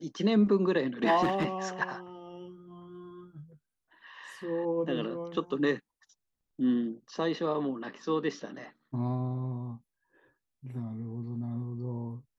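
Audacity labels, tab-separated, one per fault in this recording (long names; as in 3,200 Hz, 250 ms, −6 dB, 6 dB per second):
1.220000	1.450000	clipping −23.5 dBFS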